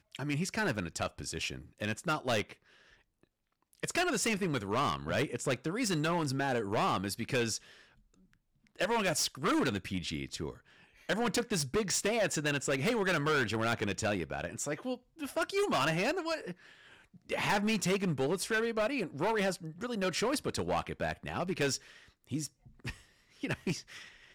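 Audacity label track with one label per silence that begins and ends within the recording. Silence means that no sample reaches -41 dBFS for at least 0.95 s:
2.520000	3.830000	silence
7.570000	8.790000	silence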